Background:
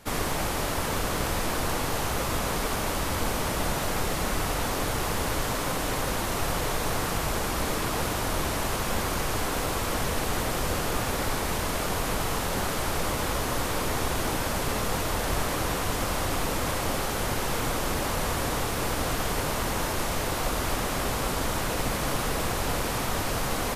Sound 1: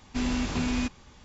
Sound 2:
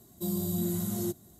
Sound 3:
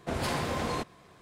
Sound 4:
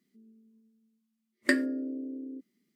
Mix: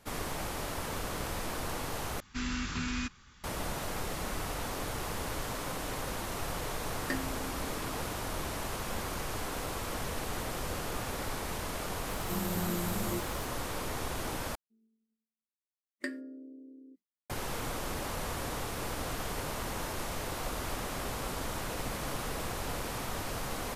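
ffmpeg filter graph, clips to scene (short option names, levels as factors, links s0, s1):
-filter_complex "[4:a]asplit=2[s0][s1];[0:a]volume=0.376[s2];[1:a]firequalizer=gain_entry='entry(150,0);entry(640,-12);entry(1300,8);entry(2300,3)':delay=0.05:min_phase=1[s3];[2:a]aeval=exprs='val(0)+0.5*0.00891*sgn(val(0))':c=same[s4];[s1]agate=range=0.0224:threshold=0.00141:ratio=3:release=100:detection=peak[s5];[s2]asplit=3[s6][s7][s8];[s6]atrim=end=2.204[s9];[s3]atrim=end=1.24,asetpts=PTS-STARTPTS,volume=0.501[s10];[s7]atrim=start=3.436:end=14.554[s11];[s5]atrim=end=2.75,asetpts=PTS-STARTPTS,volume=0.237[s12];[s8]atrim=start=17.296[s13];[s0]atrim=end=2.75,asetpts=PTS-STARTPTS,volume=0.282,afade=t=in:d=0.004:c=hsin,afade=t=out:st=2.746:d=0.004:c=hsin,adelay=247401S[s14];[s4]atrim=end=1.39,asetpts=PTS-STARTPTS,volume=0.531,afade=t=in:d=0.004:c=hsin,afade=t=out:st=1.386:d=0.004:c=hsin,adelay=12080[s15];[s9][s10]acrossfade=d=0.004:c1=hsin:c2=hsin[s16];[s16][s11]acrossfade=d=0.004:c1=hsin:c2=hsin[s17];[s17][s12]acrossfade=d=0.004:c1=hsin:c2=hsin[s18];[s18][s13]acrossfade=d=0.004:c1=hsin:c2=hsin[s19];[s19][s14][s15]amix=inputs=3:normalize=0"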